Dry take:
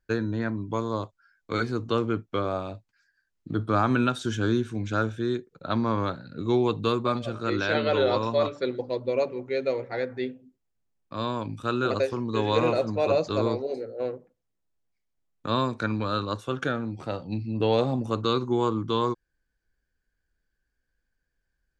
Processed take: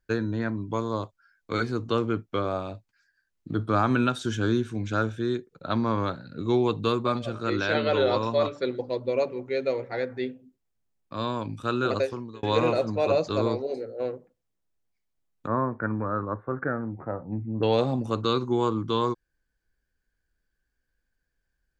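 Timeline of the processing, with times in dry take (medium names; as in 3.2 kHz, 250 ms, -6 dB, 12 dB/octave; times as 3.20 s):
11.99–12.43 s: fade out
15.47–17.63 s: elliptic low-pass 1.9 kHz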